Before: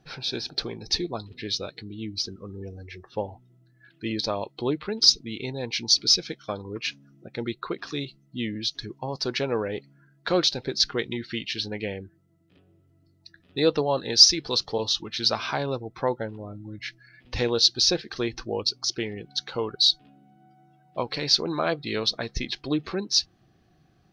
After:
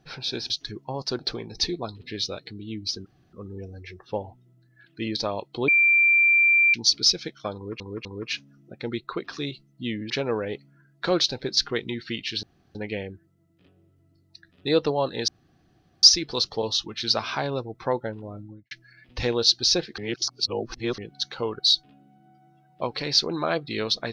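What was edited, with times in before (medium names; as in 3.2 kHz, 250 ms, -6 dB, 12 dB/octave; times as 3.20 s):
2.37 s: insert room tone 0.27 s
4.72–5.78 s: bleep 2.36 kHz -15 dBFS
6.59–6.84 s: loop, 3 plays
8.64–9.33 s: move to 0.50 s
11.66 s: insert room tone 0.32 s
14.19 s: insert room tone 0.75 s
16.54–16.87 s: studio fade out
18.14–19.14 s: reverse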